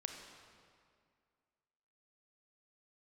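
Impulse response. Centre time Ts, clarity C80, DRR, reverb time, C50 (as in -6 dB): 54 ms, 5.5 dB, 3.5 dB, 2.2 s, 4.5 dB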